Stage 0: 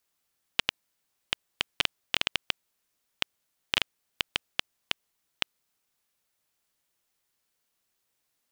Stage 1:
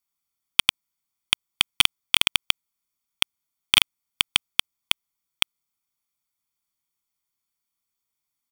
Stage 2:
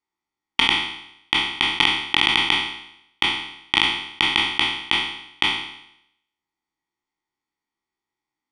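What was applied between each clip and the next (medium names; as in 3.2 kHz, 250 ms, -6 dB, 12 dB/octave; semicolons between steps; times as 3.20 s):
treble shelf 6.4 kHz +5 dB; comb 0.9 ms, depth 65%; waveshaping leveller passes 5
spectral sustain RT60 0.77 s; Gaussian low-pass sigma 1.5 samples; small resonant body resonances 330/840/1900 Hz, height 14 dB, ringing for 25 ms; trim -2 dB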